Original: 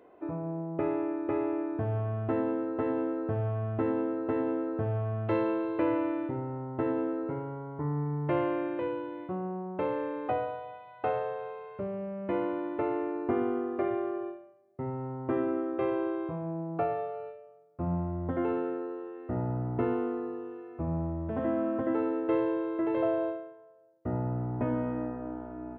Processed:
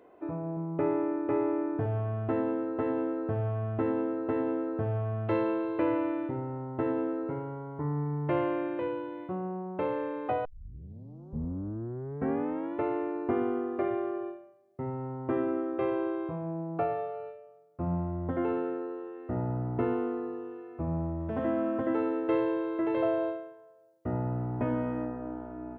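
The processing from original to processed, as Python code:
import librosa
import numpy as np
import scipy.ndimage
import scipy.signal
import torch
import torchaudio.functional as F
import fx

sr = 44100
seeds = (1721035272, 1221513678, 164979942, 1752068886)

y = fx.comb(x, sr, ms=6.9, depth=0.52, at=(0.56, 1.86))
y = fx.high_shelf(y, sr, hz=2600.0, db=6.0, at=(21.2, 25.05))
y = fx.edit(y, sr, fx.tape_start(start_s=10.45, length_s=2.35), tone=tone)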